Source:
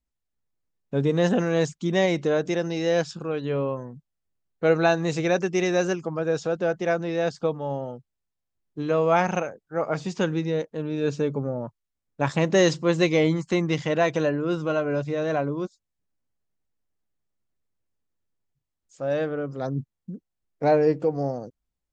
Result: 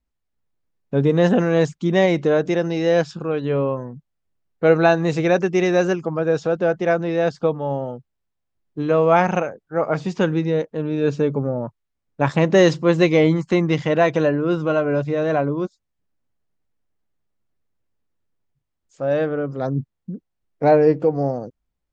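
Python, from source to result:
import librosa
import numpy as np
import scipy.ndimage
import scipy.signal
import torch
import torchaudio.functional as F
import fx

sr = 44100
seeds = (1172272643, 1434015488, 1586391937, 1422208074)

y = fx.high_shelf(x, sr, hz=5000.0, db=-12.0)
y = y * librosa.db_to_amplitude(5.5)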